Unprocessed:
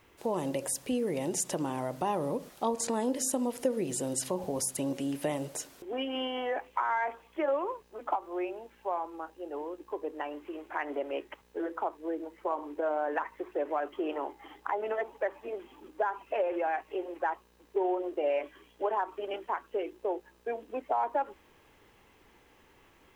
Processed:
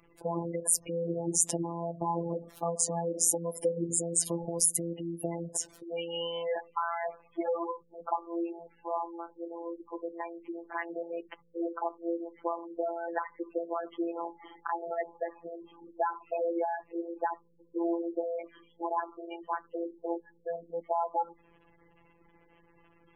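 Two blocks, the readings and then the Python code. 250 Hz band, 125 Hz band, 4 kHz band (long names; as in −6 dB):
−1.0 dB, +3.0 dB, −1.0 dB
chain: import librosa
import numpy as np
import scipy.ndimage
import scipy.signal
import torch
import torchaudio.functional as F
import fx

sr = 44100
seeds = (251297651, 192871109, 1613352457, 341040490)

y = fx.peak_eq(x, sr, hz=74.0, db=7.5, octaves=1.4)
y = fx.spec_gate(y, sr, threshold_db=-15, keep='strong')
y = fx.high_shelf(y, sr, hz=5800.0, db=11.5)
y = fx.robotise(y, sr, hz=169.0)
y = F.gain(torch.from_numpy(y), 1.5).numpy()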